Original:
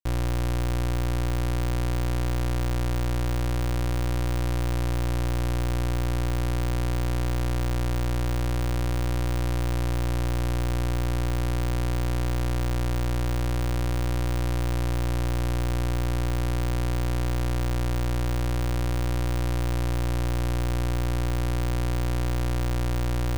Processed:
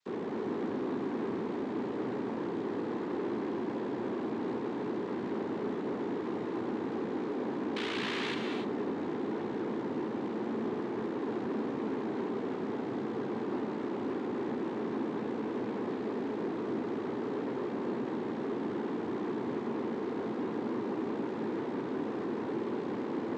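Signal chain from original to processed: 7.75–8.34 s: peaking EQ 2.4 kHz +10.5 dB 0.44 oct; sine folder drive 10 dB, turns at -20 dBFS; frequency shift -390 Hz; noise-vocoded speech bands 6; hard clipper -32.5 dBFS, distortion -9 dB; band-pass 150–4100 Hz; gated-style reverb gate 320 ms rising, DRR 4 dB

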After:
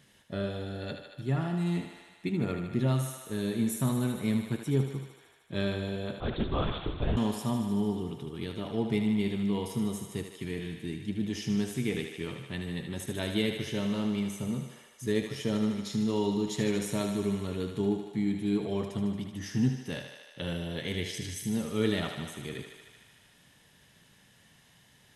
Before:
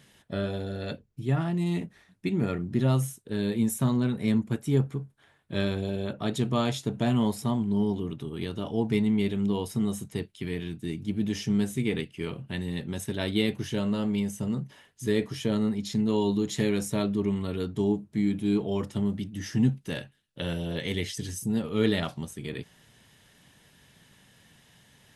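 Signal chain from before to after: thinning echo 76 ms, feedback 79%, high-pass 370 Hz, level -7 dB; 6.20–7.17 s: LPC vocoder at 8 kHz whisper; trim -3.5 dB

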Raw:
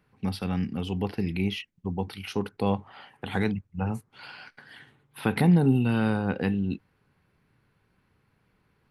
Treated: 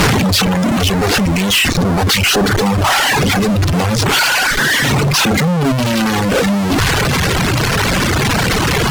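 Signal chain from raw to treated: one-bit delta coder 32 kbps, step -31.5 dBFS; fuzz box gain 47 dB, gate -56 dBFS; reverb removal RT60 1.5 s; trim +3 dB

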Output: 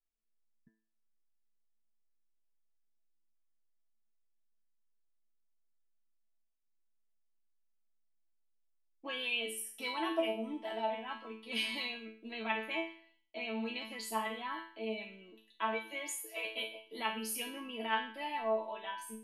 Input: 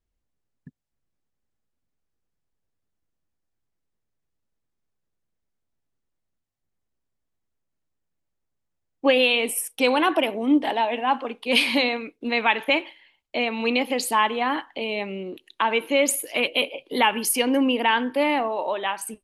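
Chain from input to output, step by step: 15.73–16.45 s: Chebyshev high-pass 280 Hz, order 10; chord resonator A3 fifth, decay 0.45 s; trim +3.5 dB

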